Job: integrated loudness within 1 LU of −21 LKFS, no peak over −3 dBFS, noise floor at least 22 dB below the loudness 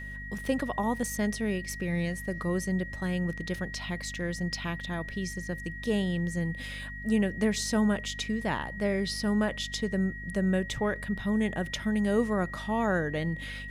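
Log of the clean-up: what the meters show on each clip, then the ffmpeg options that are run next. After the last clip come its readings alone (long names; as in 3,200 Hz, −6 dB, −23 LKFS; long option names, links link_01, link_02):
mains hum 50 Hz; hum harmonics up to 250 Hz; level of the hum −40 dBFS; interfering tone 1,900 Hz; level of the tone −40 dBFS; integrated loudness −30.5 LKFS; sample peak −14.5 dBFS; target loudness −21.0 LKFS
→ -af "bandreject=frequency=50:width_type=h:width=4,bandreject=frequency=100:width_type=h:width=4,bandreject=frequency=150:width_type=h:width=4,bandreject=frequency=200:width_type=h:width=4,bandreject=frequency=250:width_type=h:width=4"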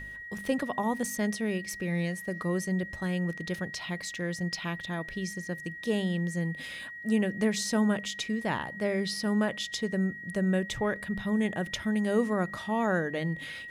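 mains hum none found; interfering tone 1,900 Hz; level of the tone −40 dBFS
→ -af "bandreject=frequency=1900:width=30"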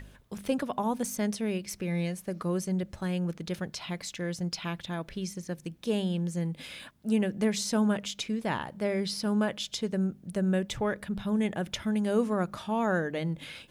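interfering tone none found; integrated loudness −31.0 LKFS; sample peak −15.0 dBFS; target loudness −21.0 LKFS
→ -af "volume=10dB"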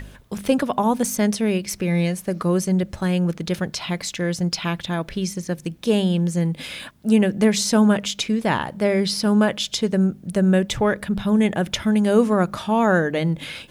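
integrated loudness −21.0 LKFS; sample peak −5.0 dBFS; background noise floor −46 dBFS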